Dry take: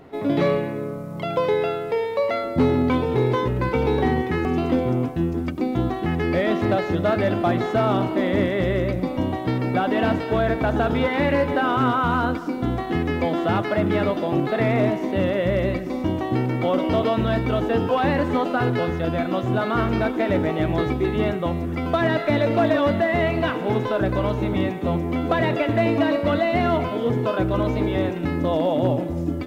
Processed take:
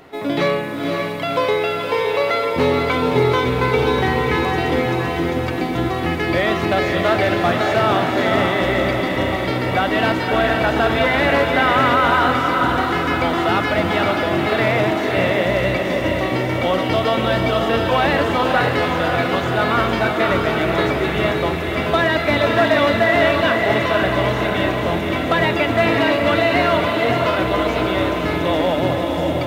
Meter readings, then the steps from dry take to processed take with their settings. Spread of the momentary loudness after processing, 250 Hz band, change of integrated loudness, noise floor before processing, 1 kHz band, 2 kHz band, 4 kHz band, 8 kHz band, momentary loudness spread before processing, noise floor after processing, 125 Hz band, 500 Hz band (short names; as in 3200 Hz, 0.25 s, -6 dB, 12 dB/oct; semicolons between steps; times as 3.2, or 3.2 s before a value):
5 LU, +1.0 dB, +4.5 dB, -29 dBFS, +6.5 dB, +10.0 dB, +11.0 dB, n/a, 4 LU, -22 dBFS, +1.0 dB, +4.0 dB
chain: tilt shelf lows -5.5 dB, about 870 Hz; notches 50/100/150/200/250 Hz; diffused feedback echo 0.54 s, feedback 56%, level -3 dB; gain +4 dB